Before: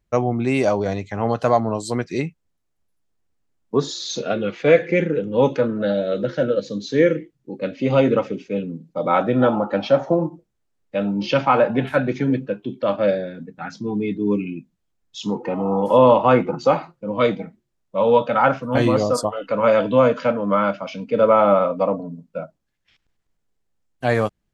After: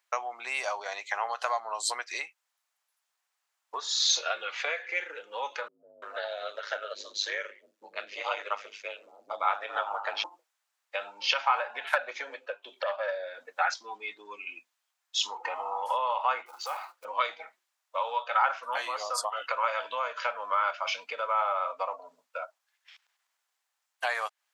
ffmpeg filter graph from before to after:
ffmpeg -i in.wav -filter_complex "[0:a]asettb=1/sr,asplit=3[link_01][link_02][link_03];[link_01]atrim=end=5.684[link_04];[link_02]atrim=start=5.68:end=10.24,asetpts=PTS-STARTPTS,afade=type=in:duration=0.004:curve=qsin,afade=type=out:start_time=4.556:duration=0.004:curve=qsin,aeval=exprs='val(0)*sin(2*PI*51*n/s)':channel_layout=same,acrossover=split=280[link_05][link_06];[link_06]adelay=340[link_07];[link_05][link_07]amix=inputs=2:normalize=0,atrim=end_sample=201096[link_08];[link_03]atrim=start=10.236[link_09];[link_04][link_08]acrossfade=duration=0.004:curve1=hsin:curve2=qsin[link_10];[link_10][link_09]acrossfade=duration=0.004:curve1=qsin:curve2=hsin,asettb=1/sr,asplit=3[link_11][link_12][link_13];[link_11]atrim=end=11.934[link_14];[link_12]atrim=start=11.93:end=13.74,asetpts=PTS-STARTPTS,afade=type=in:duration=0.004:curve=qsin,afade=type=out:start_time=1.806:duration=0.004:curve=qsin,equalizer=frequency=560:width_type=o:width=0.56:gain=11,aeval=exprs='1.26*sin(PI/2*1.58*val(0)/1.26)':channel_layout=same[link_15];[link_13]atrim=start=13.736[link_16];[link_14][link_15]acrossfade=duration=0.004:curve1=hsin:curve2=qsin[link_17];[link_17][link_16]acrossfade=duration=0.004:curve1=qsin:curve2=hsin,asettb=1/sr,asplit=3[link_18][link_19][link_20];[link_18]atrim=end=16.464[link_21];[link_19]atrim=start=16.46:end=17.05,asetpts=PTS-STARTPTS,afade=type=in:duration=0.004:curve=qsin,afade=type=out:start_time=0.586:duration=0.004:curve=qsin,acompressor=threshold=-42dB:ratio=2:attack=3.2:release=140:knee=1:detection=peak,acrusher=bits=6:mode=log:mix=0:aa=0.000001[link_22];[link_20]atrim=start=17.046[link_23];[link_21][link_22]acrossfade=duration=0.004:curve1=hsin:curve2=qsin[link_24];[link_24][link_23]acrossfade=duration=0.004:curve1=qsin:curve2=hsin,acompressor=threshold=-26dB:ratio=6,highpass=frequency=850:width=0.5412,highpass=frequency=850:width=1.3066,volume=6.5dB" out.wav

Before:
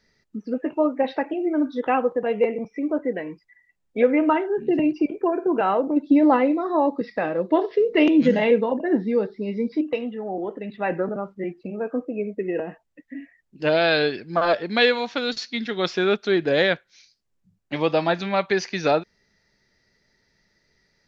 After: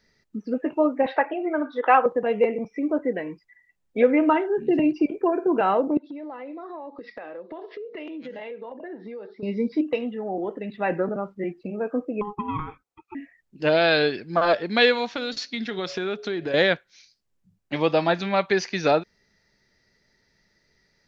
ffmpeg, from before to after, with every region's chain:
ffmpeg -i in.wav -filter_complex "[0:a]asettb=1/sr,asplit=3[link_01][link_02][link_03];[link_01]atrim=end=1.064[link_04];[link_02]atrim=start=1.06:end=2.06,asetpts=PTS-STARTPTS,afade=type=in:duration=0.004:curve=qsin,afade=type=out:start_time=0.996:duration=0.004:curve=qsin,equalizer=frequency=1300:width=1.1:gain=3.5,acontrast=36,highpass=570,lowpass=2500[link_05];[link_03]atrim=start=2.056[link_06];[link_04][link_05]acrossfade=duration=0.004:curve1=hsin:curve2=qsin[link_07];[link_07][link_06]acrossfade=duration=0.004:curve1=qsin:curve2=hsin,asettb=1/sr,asplit=3[link_08][link_09][link_10];[link_08]atrim=end=5.974[link_11];[link_09]atrim=start=5.97:end=9.43,asetpts=PTS-STARTPTS,afade=type=in:duration=0.004:curve=qsin,afade=type=out:start_time=3.456:duration=0.004:curve=qsin,highpass=350,lowpass=4300,acompressor=threshold=-34dB:ratio=8:attack=3.2:release=140:knee=1:detection=peak[link_12];[link_10]atrim=start=9.426[link_13];[link_11][link_12]acrossfade=duration=0.004:curve1=hsin:curve2=qsin[link_14];[link_14][link_13]acrossfade=duration=0.004:curve1=qsin:curve2=hsin,asettb=1/sr,asplit=3[link_15][link_16][link_17];[link_15]atrim=end=12.214[link_18];[link_16]atrim=start=12.21:end=13.15,asetpts=PTS-STARTPTS,afade=type=in:duration=0.004:curve=qsin,afade=type=out:start_time=0.936:duration=0.004:curve=qsin,highpass=110,bandreject=frequency=2300:width=5,aeval=exprs='val(0)*sin(2*PI*620*n/s)':channel_layout=same[link_19];[link_17]atrim=start=13.146[link_20];[link_18][link_19]acrossfade=duration=0.004:curve1=hsin:curve2=qsin[link_21];[link_21][link_20]acrossfade=duration=0.004:curve1=qsin:curve2=hsin,asettb=1/sr,asplit=3[link_22][link_23][link_24];[link_22]atrim=end=15.094[link_25];[link_23]atrim=start=15.09:end=16.54,asetpts=PTS-STARTPTS,afade=type=in:duration=0.004:curve=qsin,afade=type=out:start_time=1.446:duration=0.004:curve=qsin,bandreject=frequency=139.5:width_type=h:width=4,bandreject=frequency=279:width_type=h:width=4,bandreject=frequency=418.5:width_type=h:width=4,bandreject=frequency=558:width_type=h:width=4,bandreject=frequency=697.5:width_type=h:width=4,acompressor=threshold=-24dB:ratio=6:attack=3.2:release=140:knee=1:detection=peak[link_26];[link_24]atrim=start=16.536[link_27];[link_25][link_26]acrossfade=duration=0.004:curve1=hsin:curve2=qsin[link_28];[link_28][link_27]acrossfade=duration=0.004:curve1=qsin:curve2=hsin" out.wav

